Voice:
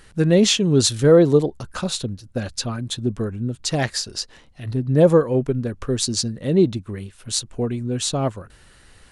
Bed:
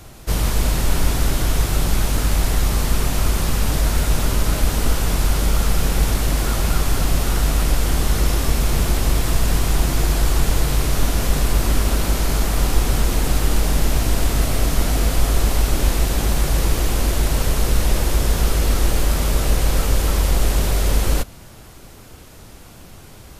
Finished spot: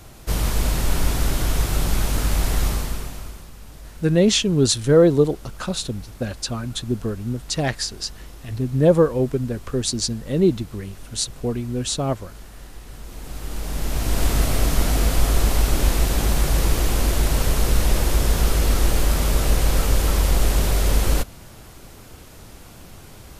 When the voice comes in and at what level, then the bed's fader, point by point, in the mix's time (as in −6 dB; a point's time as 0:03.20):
3.85 s, −1.0 dB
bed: 0:02.67 −2.5 dB
0:03.51 −22.5 dB
0:12.85 −22.5 dB
0:14.25 −1 dB